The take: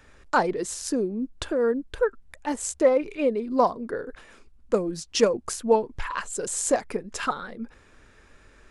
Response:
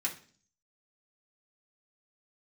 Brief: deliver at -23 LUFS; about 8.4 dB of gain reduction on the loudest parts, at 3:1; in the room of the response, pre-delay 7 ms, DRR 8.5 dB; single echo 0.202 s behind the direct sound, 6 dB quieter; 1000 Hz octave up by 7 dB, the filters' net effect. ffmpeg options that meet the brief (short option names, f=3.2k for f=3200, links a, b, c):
-filter_complex "[0:a]equalizer=f=1k:t=o:g=8.5,acompressor=threshold=-22dB:ratio=3,aecho=1:1:202:0.501,asplit=2[a][b];[1:a]atrim=start_sample=2205,adelay=7[c];[b][c]afir=irnorm=-1:irlink=0,volume=-12dB[d];[a][d]amix=inputs=2:normalize=0,volume=4dB"